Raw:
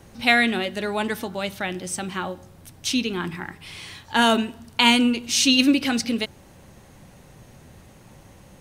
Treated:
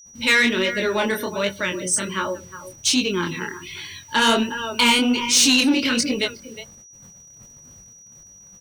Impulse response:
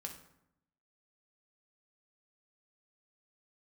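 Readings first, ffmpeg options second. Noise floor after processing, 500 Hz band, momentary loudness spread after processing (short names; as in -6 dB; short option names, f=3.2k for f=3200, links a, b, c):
-47 dBFS, +3.5 dB, 18 LU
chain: -filter_complex "[0:a]asplit=2[a][b];[b]adelay=360,highpass=300,lowpass=3.4k,asoftclip=type=hard:threshold=-12.5dB,volume=-12dB[c];[a][c]amix=inputs=2:normalize=0,adynamicequalizer=threshold=0.0224:dfrequency=5200:dqfactor=0.81:tfrequency=5200:tqfactor=0.81:attack=5:release=100:ratio=0.375:range=1.5:mode=cutabove:tftype=bell,asuperstop=centerf=750:order=8:qfactor=4.1,asplit=2[d][e];[e]volume=20dB,asoftclip=hard,volume=-20dB,volume=-9dB[f];[d][f]amix=inputs=2:normalize=0,afftdn=nr=20:nf=-36,acontrast=61,bass=f=250:g=-6,treble=f=4k:g=6,acrusher=bits=7:mix=0:aa=0.000001,agate=range=-53dB:threshold=-45dB:ratio=16:detection=peak,flanger=delay=19.5:depth=7.7:speed=1.3,aeval=exprs='val(0)+0.00631*sin(2*PI*5800*n/s)':c=same,acontrast=68,volume=-7dB"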